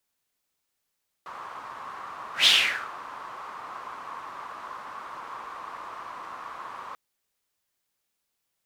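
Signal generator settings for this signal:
pass-by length 5.69 s, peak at 0:01.20, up 0.13 s, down 0.49 s, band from 1,100 Hz, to 3,400 Hz, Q 5.1, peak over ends 22.5 dB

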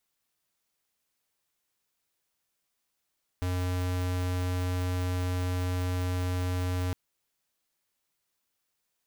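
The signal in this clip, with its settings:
tone square 90.5 Hz −29.5 dBFS 3.51 s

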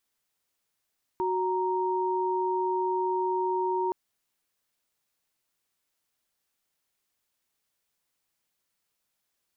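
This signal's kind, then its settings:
held notes F#4/A#5 sine, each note −27.5 dBFS 2.72 s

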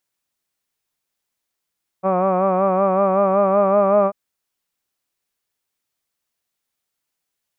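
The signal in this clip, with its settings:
vowel by formant synthesis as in hud, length 2.09 s, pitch 185 Hz, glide +1.5 semitones, vibrato depth 0.6 semitones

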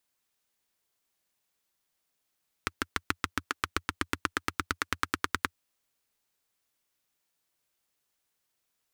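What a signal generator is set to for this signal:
pulse-train model of a single-cylinder engine, changing speed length 2.87 s, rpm 800, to 1,200, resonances 87/290/1,300 Hz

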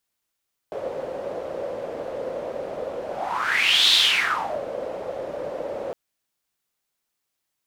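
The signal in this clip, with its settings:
pass-by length 5.21 s, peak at 0:03.21, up 0.94 s, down 0.74 s, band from 540 Hz, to 3,700 Hz, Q 6.1, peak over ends 14 dB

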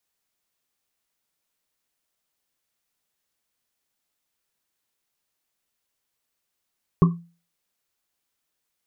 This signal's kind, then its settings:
drum after Risset, pitch 170 Hz, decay 0.36 s, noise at 1,100 Hz, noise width 140 Hz, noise 15%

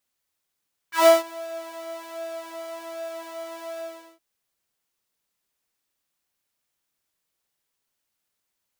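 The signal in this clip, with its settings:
subtractive patch with pulse-width modulation E4, detune 16 cents, sub −23 dB, noise −11.5 dB, filter highpass, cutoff 500 Hz, Q 4.1, filter envelope 2 octaves, filter decay 0.10 s, filter sustain 20%, attack 140 ms, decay 0.17 s, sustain −23.5 dB, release 0.40 s, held 2.87 s, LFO 1.3 Hz, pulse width 47%, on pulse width 16%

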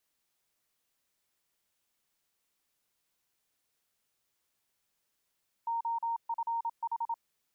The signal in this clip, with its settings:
Morse code "OFH" 27 words per minute 925 Hz −29.5 dBFS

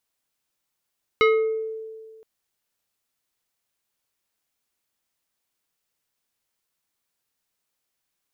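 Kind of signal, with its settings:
two-operator FM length 1.02 s, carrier 442 Hz, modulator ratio 3.86, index 1.2, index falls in 0.70 s exponential, decay 1.80 s, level −12.5 dB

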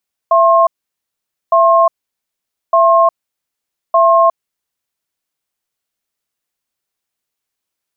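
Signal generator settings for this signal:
tone pair in a cadence 669 Hz, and 1,070 Hz, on 0.36 s, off 0.85 s, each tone −9 dBFS 4.70 s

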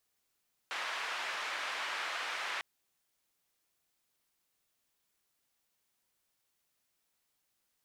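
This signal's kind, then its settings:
band-limited noise 950–2,100 Hz, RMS −38 dBFS 1.90 s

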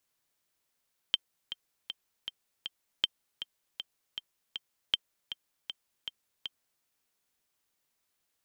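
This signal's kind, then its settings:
click track 158 BPM, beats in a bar 5, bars 3, 3,140 Hz, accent 12 dB −11 dBFS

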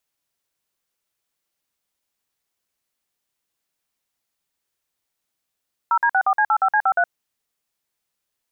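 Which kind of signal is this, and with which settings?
touch tones "0D64C85C53", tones 67 ms, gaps 51 ms, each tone −17 dBFS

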